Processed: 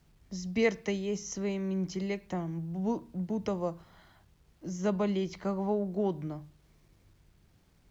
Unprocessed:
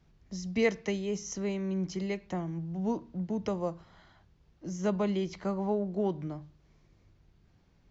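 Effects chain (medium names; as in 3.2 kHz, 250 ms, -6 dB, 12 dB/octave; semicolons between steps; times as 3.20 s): bit crusher 12-bit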